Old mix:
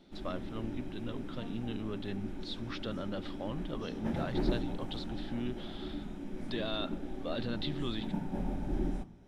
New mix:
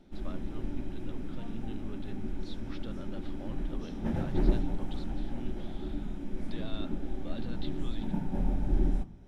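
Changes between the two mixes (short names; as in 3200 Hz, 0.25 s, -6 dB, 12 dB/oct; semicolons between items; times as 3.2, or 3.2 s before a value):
speech -8.5 dB; master: add low shelf 110 Hz +10 dB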